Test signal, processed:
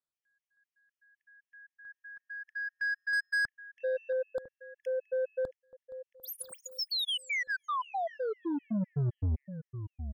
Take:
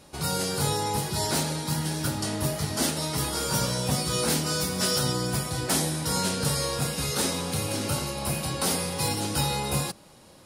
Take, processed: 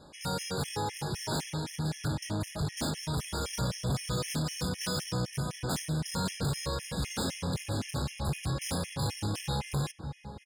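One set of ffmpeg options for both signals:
ffmpeg -i in.wav -filter_complex "[0:a]asubboost=boost=2:cutoff=210,asplit=2[link_01][link_02];[link_02]adelay=674,lowpass=frequency=1300:poles=1,volume=-15dB,asplit=2[link_03][link_04];[link_04]adelay=674,lowpass=frequency=1300:poles=1,volume=0.48,asplit=2[link_05][link_06];[link_06]adelay=674,lowpass=frequency=1300:poles=1,volume=0.48,asplit=2[link_07][link_08];[link_08]adelay=674,lowpass=frequency=1300:poles=1,volume=0.48[link_09];[link_03][link_05][link_07][link_09]amix=inputs=4:normalize=0[link_10];[link_01][link_10]amix=inputs=2:normalize=0,adynamicsmooth=sensitivity=4.5:basefreq=7600,asoftclip=type=tanh:threshold=-26dB,afftfilt=real='re*gt(sin(2*PI*3.9*pts/sr)*(1-2*mod(floor(b*sr/1024/1700),2)),0)':imag='im*gt(sin(2*PI*3.9*pts/sr)*(1-2*mod(floor(b*sr/1024/1700),2)),0)':win_size=1024:overlap=0.75" out.wav

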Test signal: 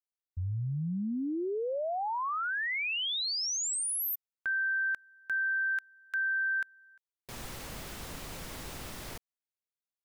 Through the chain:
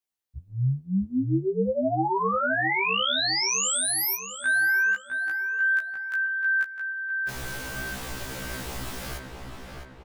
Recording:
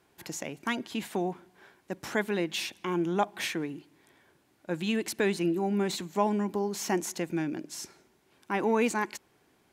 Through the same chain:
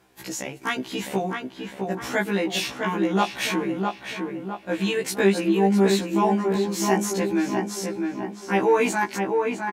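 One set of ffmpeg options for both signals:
ffmpeg -i in.wav -filter_complex "[0:a]asplit=2[link_01][link_02];[link_02]adelay=658,lowpass=frequency=2500:poles=1,volume=-4dB,asplit=2[link_03][link_04];[link_04]adelay=658,lowpass=frequency=2500:poles=1,volume=0.5,asplit=2[link_05][link_06];[link_06]adelay=658,lowpass=frequency=2500:poles=1,volume=0.5,asplit=2[link_07][link_08];[link_08]adelay=658,lowpass=frequency=2500:poles=1,volume=0.5,asplit=2[link_09][link_10];[link_10]adelay=658,lowpass=frequency=2500:poles=1,volume=0.5,asplit=2[link_11][link_12];[link_12]adelay=658,lowpass=frequency=2500:poles=1,volume=0.5[link_13];[link_01][link_03][link_05][link_07][link_09][link_11][link_13]amix=inputs=7:normalize=0,afftfilt=real='re*1.73*eq(mod(b,3),0)':imag='im*1.73*eq(mod(b,3),0)':win_size=2048:overlap=0.75,volume=8.5dB" out.wav

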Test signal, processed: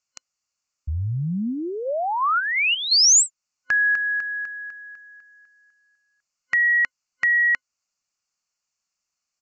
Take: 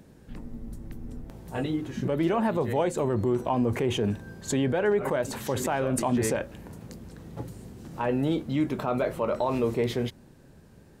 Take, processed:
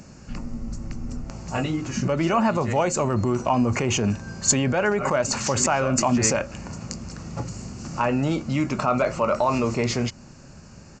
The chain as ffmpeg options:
ffmpeg -i in.wav -filter_complex "[0:a]superequalizer=6b=0.631:7b=0.501:10b=1.58:11b=0.708:13b=0.282,asplit=2[link_01][link_02];[link_02]acompressor=threshold=-35dB:ratio=6,volume=-2dB[link_03];[link_01][link_03]amix=inputs=2:normalize=0,crystalizer=i=3.5:c=0,aresample=16000,aresample=44100,volume=3dB" out.wav

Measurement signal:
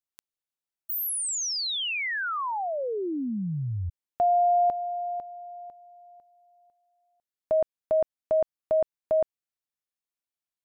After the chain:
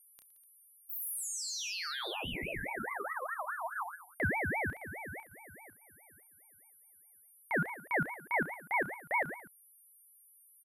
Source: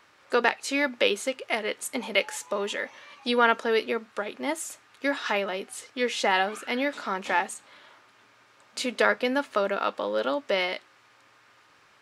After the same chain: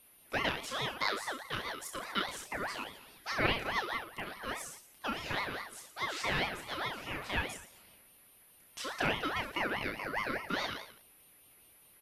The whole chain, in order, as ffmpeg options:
ffmpeg -i in.wav -af "aecho=1:1:30|67.5|114.4|173|246.2:0.631|0.398|0.251|0.158|0.1,aeval=exprs='val(0)+0.00398*sin(2*PI*11000*n/s)':channel_layout=same,aeval=exprs='val(0)*sin(2*PI*1200*n/s+1200*0.35/4.8*sin(2*PI*4.8*n/s))':channel_layout=same,volume=-8.5dB" out.wav

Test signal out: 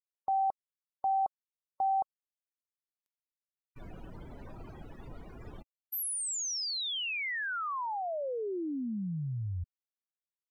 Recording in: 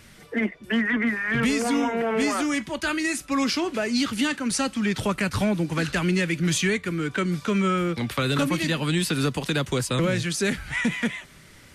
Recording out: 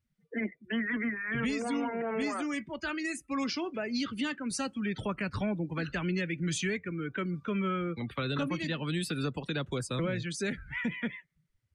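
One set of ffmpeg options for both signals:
ffmpeg -i in.wav -af "afftdn=noise_reduction=31:noise_floor=-34,volume=-8.5dB" out.wav

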